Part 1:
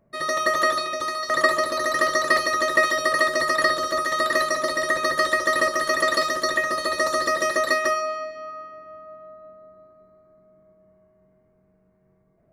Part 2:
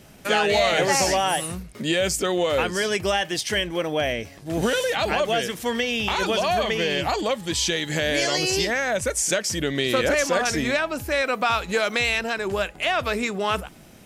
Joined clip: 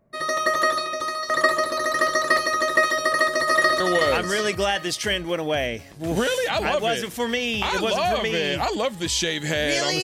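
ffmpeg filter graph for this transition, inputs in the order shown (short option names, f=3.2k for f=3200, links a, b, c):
-filter_complex "[0:a]apad=whole_dur=10.03,atrim=end=10.03,atrim=end=3.802[a];[1:a]atrim=start=2.258:end=8.49[b];[a][b]acrossfade=d=0.004:c1=hsin:c2=hsin,asplit=2[c][d];[d]afade=t=in:st=3.1:d=0.01,afade=t=out:st=3.8:d=0.01,aecho=0:1:370|740|1110|1480|1850:0.668344|0.267338|0.106935|0.042774|0.0171096[e];[c][e]amix=inputs=2:normalize=0"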